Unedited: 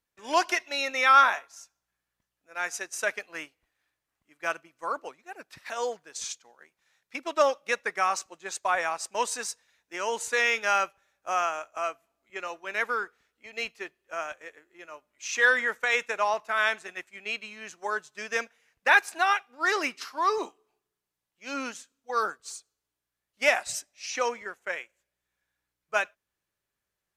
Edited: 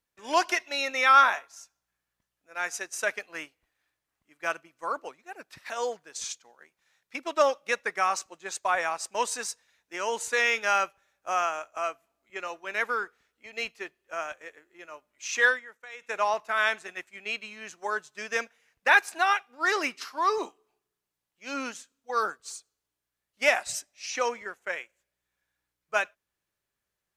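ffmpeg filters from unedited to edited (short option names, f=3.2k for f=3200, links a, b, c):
-filter_complex "[0:a]asplit=3[a][b][c];[a]atrim=end=15.6,asetpts=PTS-STARTPTS,afade=t=out:st=15.46:d=0.14:silence=0.11885[d];[b]atrim=start=15.6:end=16.01,asetpts=PTS-STARTPTS,volume=-18.5dB[e];[c]atrim=start=16.01,asetpts=PTS-STARTPTS,afade=t=in:d=0.14:silence=0.11885[f];[d][e][f]concat=n=3:v=0:a=1"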